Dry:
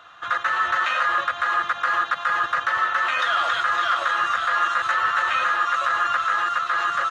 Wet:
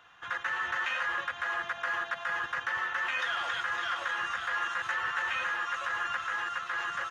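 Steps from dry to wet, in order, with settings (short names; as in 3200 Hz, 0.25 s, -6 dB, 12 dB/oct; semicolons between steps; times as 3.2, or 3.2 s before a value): 1.43–2.4 whine 680 Hz -33 dBFS; thirty-one-band EQ 315 Hz -4 dB, 630 Hz -10 dB, 1250 Hz -11 dB, 4000 Hz -9 dB, 8000 Hz -5 dB; gain -5.5 dB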